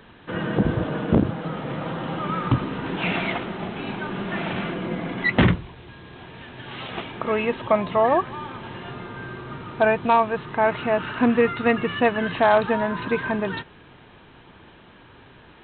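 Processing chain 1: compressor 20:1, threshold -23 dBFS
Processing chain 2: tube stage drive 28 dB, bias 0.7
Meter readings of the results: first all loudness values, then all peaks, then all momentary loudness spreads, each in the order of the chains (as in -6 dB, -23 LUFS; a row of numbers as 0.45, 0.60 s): -29.5, -33.0 LUFS; -11.0, -24.0 dBFS; 20, 16 LU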